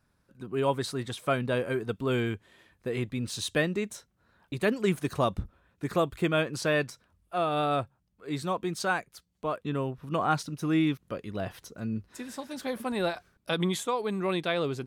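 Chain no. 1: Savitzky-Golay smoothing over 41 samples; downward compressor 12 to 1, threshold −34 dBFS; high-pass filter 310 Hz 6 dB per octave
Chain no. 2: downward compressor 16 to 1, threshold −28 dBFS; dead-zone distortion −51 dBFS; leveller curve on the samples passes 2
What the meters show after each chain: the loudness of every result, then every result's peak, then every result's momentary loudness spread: −42.5, −29.0 LKFS; −23.0, −16.0 dBFS; 6, 8 LU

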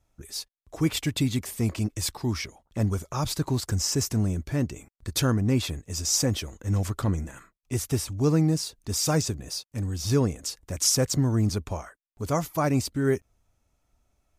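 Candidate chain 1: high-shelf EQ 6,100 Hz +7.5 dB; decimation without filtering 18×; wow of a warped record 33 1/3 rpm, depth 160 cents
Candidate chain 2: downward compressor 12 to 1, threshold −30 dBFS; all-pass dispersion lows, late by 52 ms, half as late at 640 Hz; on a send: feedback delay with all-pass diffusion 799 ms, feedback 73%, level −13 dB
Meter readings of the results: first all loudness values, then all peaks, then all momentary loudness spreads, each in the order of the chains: −26.5, −35.0 LKFS; −8.0, −18.5 dBFS; 11, 7 LU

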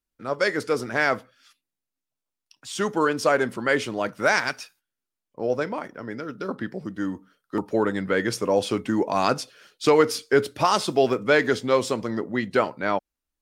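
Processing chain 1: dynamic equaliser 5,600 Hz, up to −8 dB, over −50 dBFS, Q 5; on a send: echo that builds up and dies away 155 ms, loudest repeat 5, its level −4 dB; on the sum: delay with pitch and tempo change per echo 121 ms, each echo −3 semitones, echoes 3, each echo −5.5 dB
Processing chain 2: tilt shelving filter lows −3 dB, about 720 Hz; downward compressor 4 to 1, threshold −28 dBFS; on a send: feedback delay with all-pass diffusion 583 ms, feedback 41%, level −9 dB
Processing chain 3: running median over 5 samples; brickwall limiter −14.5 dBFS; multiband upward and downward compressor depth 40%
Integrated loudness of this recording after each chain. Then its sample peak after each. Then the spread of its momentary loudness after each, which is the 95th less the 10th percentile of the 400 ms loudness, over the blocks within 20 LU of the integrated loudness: −17.5, −32.0, −27.5 LKFS; −1.0, −14.0, −11.5 dBFS; 7, 10, 6 LU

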